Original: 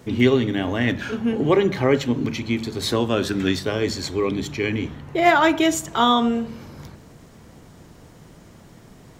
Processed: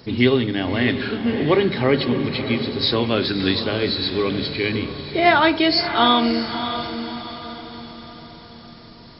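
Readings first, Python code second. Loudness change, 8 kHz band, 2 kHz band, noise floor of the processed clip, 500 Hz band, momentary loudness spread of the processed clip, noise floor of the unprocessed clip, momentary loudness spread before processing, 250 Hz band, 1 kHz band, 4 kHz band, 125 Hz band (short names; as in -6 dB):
+1.5 dB, under -35 dB, +2.5 dB, -43 dBFS, +1.0 dB, 17 LU, -48 dBFS, 8 LU, +1.0 dB, +1.0 dB, +6.5 dB, +0.5 dB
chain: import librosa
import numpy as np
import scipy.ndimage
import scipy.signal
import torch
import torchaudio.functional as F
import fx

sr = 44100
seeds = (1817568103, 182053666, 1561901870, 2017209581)

y = fx.freq_compress(x, sr, knee_hz=3800.0, ratio=4.0)
y = fx.high_shelf(y, sr, hz=4100.0, db=10.0)
y = fx.echo_diffused(y, sr, ms=606, feedback_pct=47, wet_db=-9)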